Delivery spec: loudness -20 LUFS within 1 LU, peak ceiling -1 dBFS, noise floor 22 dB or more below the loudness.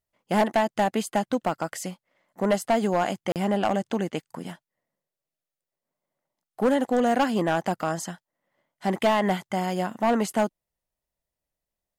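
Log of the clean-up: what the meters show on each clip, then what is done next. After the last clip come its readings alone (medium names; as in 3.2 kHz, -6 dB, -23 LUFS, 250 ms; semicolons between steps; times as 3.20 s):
clipped samples 1.0%; clipping level -16.0 dBFS; dropouts 1; longest dropout 38 ms; loudness -25.5 LUFS; peak level -16.0 dBFS; loudness target -20.0 LUFS
-> clip repair -16 dBFS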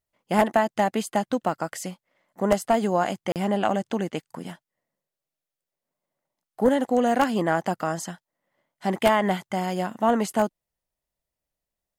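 clipped samples 0.0%; dropouts 1; longest dropout 38 ms
-> interpolate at 3.32 s, 38 ms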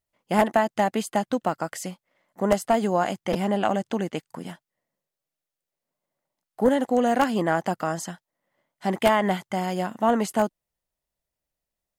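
dropouts 0; loudness -24.5 LUFS; peak level -7.0 dBFS; loudness target -20.0 LUFS
-> trim +4.5 dB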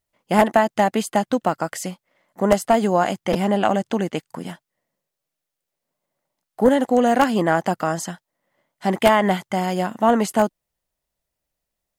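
loudness -20.0 LUFS; peak level -2.5 dBFS; noise floor -83 dBFS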